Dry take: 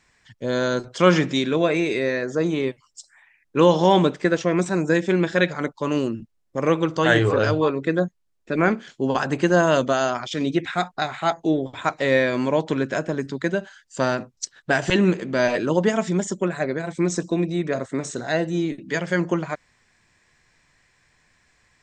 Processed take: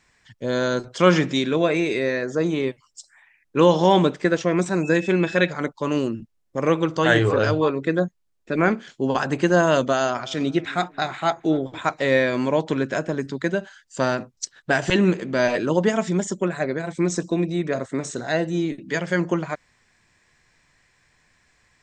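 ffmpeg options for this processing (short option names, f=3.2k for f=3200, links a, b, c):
-filter_complex "[0:a]asettb=1/sr,asplit=3[a][b][c];[a]atrim=end=4.834[d];[b]atrim=start=4.83:end=5.47,asetpts=PTS-STARTPTS,afade=t=in:d=0.004:c=qsin,afade=t=out:st=0.636:d=0.004:c=qsin,aeval=exprs='val(0)+0.0178*sin(2*PI*2600*n/s)':c=same[e];[c]atrim=start=5.466[f];[d][e]acrossfade=d=0.004:c1=hsin:c2=qsin[g];[g][f]acrossfade=d=0.004:c1=qsin:c2=hsin,asettb=1/sr,asplit=3[h][i][j];[h]atrim=end=9.804[k];[i]atrim=start=9.8:end=11.78,asetpts=PTS-STARTPTS,afade=t=in:d=0.004:c=qsin,afade=t=out:st=1.976:d=0.004:c=qsin,asplit=2[l][m];[m]adelay=270,lowpass=f=2k:p=1,volume=-21dB,asplit=2[n][o];[o]adelay=270,lowpass=f=2k:p=1,volume=0.45,asplit=2[p][q];[q]adelay=270,lowpass=f=2k:p=1,volume=0.45[r];[l][n][p][r]amix=inputs=4:normalize=0,atrim=end_sample=87318[s];[j]atrim=start=11.776[t];[k][s]acrossfade=d=0.004:c1=hsin:c2=qsin[u];[u][t]acrossfade=d=0.004:c1=qsin:c2=hsin"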